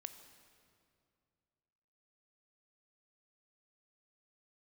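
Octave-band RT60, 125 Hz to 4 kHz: 2.8 s, 2.6 s, 2.5 s, 2.3 s, 2.0 s, 1.8 s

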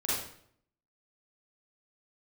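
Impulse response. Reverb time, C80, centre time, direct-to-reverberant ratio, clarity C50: 0.65 s, 3.5 dB, 70 ms, -8.5 dB, -2.0 dB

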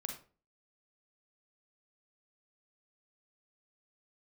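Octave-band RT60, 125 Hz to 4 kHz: 0.45 s, 0.45 s, 0.40 s, 0.35 s, 0.30 s, 0.25 s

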